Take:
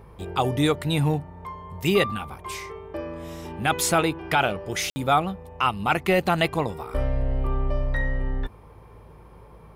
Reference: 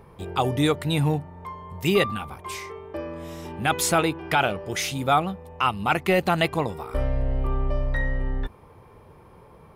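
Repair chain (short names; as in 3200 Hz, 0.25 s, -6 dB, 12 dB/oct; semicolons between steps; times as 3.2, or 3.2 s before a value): de-hum 53.4 Hz, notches 3; room tone fill 4.9–4.96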